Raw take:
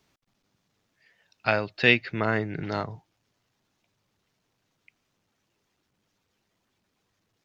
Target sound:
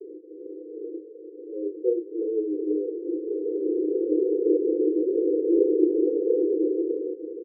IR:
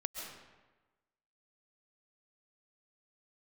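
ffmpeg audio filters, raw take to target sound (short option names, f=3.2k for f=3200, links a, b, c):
-filter_complex "[0:a]aeval=exprs='val(0)+0.5*0.0668*sgn(val(0))':c=same,dynaudnorm=f=170:g=9:m=16dB,asuperpass=centerf=390:order=20:qfactor=1.9,asplit=2[a][b];[b]adelay=32,volume=-4dB[c];[a][c]amix=inputs=2:normalize=0"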